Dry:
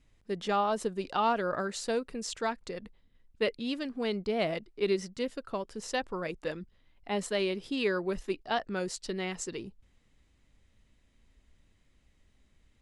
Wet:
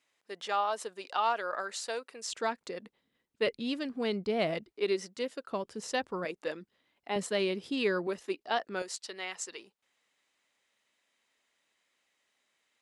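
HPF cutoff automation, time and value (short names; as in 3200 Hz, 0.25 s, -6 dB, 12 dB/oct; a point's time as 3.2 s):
650 Hz
from 2.33 s 240 Hz
from 3.47 s 93 Hz
from 4.72 s 310 Hz
from 5.51 s 110 Hz
from 6.25 s 290 Hz
from 7.16 s 110 Hz
from 8.07 s 300 Hz
from 8.82 s 690 Hz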